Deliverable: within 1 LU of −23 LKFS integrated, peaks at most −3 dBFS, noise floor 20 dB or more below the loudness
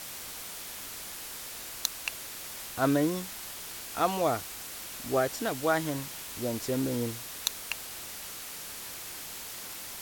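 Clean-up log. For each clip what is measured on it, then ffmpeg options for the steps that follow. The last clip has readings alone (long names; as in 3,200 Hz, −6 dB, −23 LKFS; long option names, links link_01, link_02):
background noise floor −42 dBFS; target noise floor −53 dBFS; integrated loudness −33.0 LKFS; sample peak −8.0 dBFS; target loudness −23.0 LKFS
→ -af "afftdn=noise_reduction=11:noise_floor=-42"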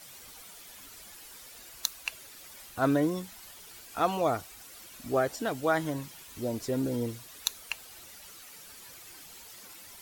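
background noise floor −50 dBFS; target noise floor −52 dBFS
→ -af "afftdn=noise_reduction=6:noise_floor=-50"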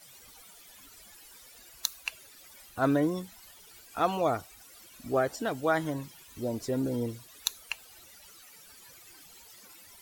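background noise floor −54 dBFS; integrated loudness −31.5 LKFS; sample peak −8.0 dBFS; target loudness −23.0 LKFS
→ -af "volume=8.5dB,alimiter=limit=-3dB:level=0:latency=1"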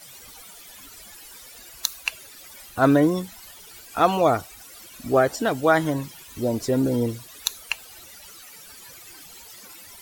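integrated loudness −23.5 LKFS; sample peak −3.0 dBFS; background noise floor −45 dBFS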